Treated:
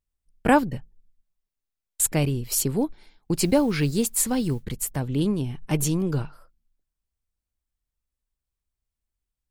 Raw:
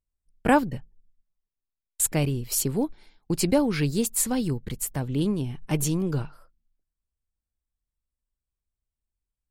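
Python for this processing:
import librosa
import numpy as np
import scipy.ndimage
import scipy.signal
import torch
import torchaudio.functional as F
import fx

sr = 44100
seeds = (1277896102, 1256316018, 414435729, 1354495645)

y = fx.mod_noise(x, sr, seeds[0], snr_db=33, at=(3.36, 4.63), fade=0.02)
y = F.gain(torch.from_numpy(y), 1.5).numpy()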